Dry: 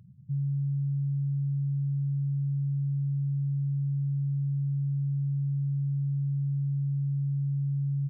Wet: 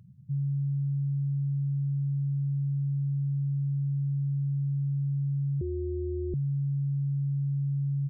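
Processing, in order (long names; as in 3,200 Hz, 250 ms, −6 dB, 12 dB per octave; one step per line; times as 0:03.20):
0:05.61–0:06.34: ring modulation 220 Hz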